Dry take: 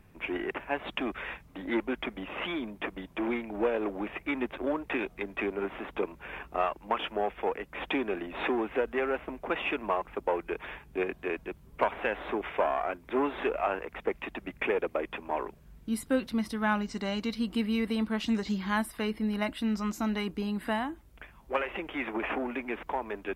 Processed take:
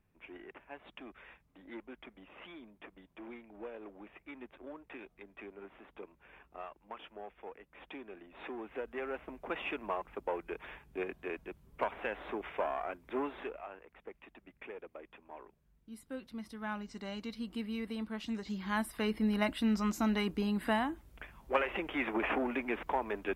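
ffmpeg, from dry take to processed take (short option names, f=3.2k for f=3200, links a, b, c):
-af "volume=10.5dB,afade=t=in:st=8.3:d=1.16:silence=0.316228,afade=t=out:st=13.17:d=0.5:silence=0.281838,afade=t=in:st=15.9:d=1.21:silence=0.375837,afade=t=in:st=18.44:d=0.78:silence=0.354813"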